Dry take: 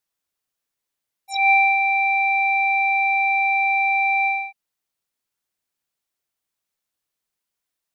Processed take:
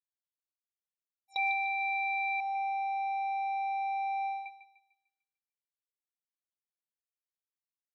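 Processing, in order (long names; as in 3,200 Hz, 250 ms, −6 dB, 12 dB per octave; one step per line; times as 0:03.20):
noise gate with hold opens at −18 dBFS
0:02.40–0:04.46: flat-topped bell 2,300 Hz −14 dB
downward compressor, threshold −20 dBFS, peak gain reduction 7.5 dB
feedback echo with a high-pass in the loop 149 ms, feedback 43%, high-pass 920 Hz, level −9.5 dB
level −8 dB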